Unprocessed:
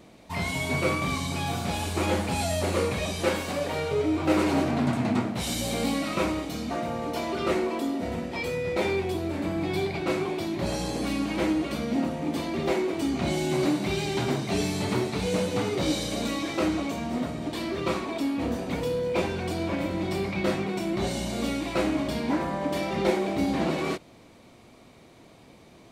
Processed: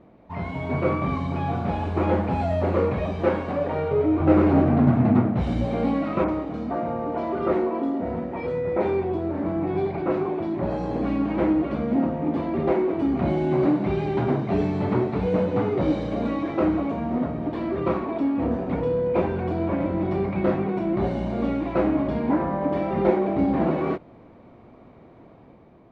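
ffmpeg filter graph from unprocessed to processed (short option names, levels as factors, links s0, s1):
-filter_complex "[0:a]asettb=1/sr,asplit=3[s0][s1][s2];[s0]atrim=end=4.204[s3];[s1]atrim=start=4.2:end=5.65,asetpts=PTS-STARTPTS,afade=t=in:d=0.004:c=qsin,afade=t=out:st=1.446:d=0.004:c=qsin,lowshelf=f=150:g=9,bandreject=f=960:w=21[s4];[s2]atrim=start=5.646[s5];[s3][s4]acrossfade=d=0.004:c1=hsin:c2=qsin[s6];[s6][s5]acrossfade=d=0.004:c1=qsin:c2=hsin,asettb=1/sr,asplit=3[s7][s8][s9];[s7]atrim=end=6.244[s10];[s8]atrim=start=6.24:end=10.91,asetpts=PTS-STARTPTS,afade=t=in:d=0.004:c=qsin,afade=t=out:st=4.666:d=0.004:c=qsin,lowshelf=f=170:g=-4.5,acrossover=split=2600[s11][s12];[s12]adelay=40[s13];[s11][s13]amix=inputs=2:normalize=0,atrim=end_sample=205947[s14];[s9]atrim=start=10.906[s15];[s10][s14]acrossfade=d=0.004:c1=hsin:c2=qsin[s16];[s16][s15]acrossfade=d=0.004:c1=qsin:c2=hsin,lowpass=1300,dynaudnorm=f=190:g=7:m=1.68"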